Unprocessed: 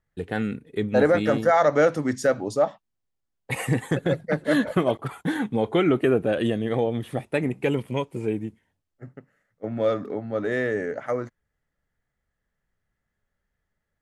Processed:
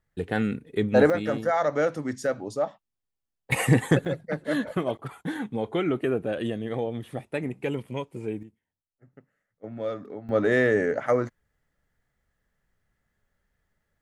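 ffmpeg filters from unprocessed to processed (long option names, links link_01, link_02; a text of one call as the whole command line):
ffmpeg -i in.wav -af "asetnsamples=nb_out_samples=441:pad=0,asendcmd='1.1 volume volume -5.5dB;3.52 volume volume 4dB;4.05 volume volume -5.5dB;8.43 volume volume -15.5dB;9.13 volume volume -8dB;10.29 volume volume 4dB',volume=1dB" out.wav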